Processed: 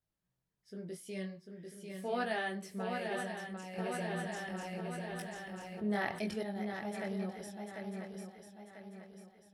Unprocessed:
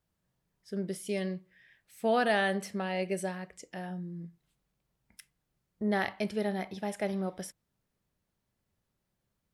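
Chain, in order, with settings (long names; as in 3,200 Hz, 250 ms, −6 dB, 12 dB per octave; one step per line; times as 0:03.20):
multi-voice chorus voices 2, 0.42 Hz, delay 20 ms, depth 4.4 ms
feedback echo with a long and a short gap by turns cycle 993 ms, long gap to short 3 to 1, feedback 40%, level −5 dB
0:03.78–0:06.43: envelope flattener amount 50%
level −5.5 dB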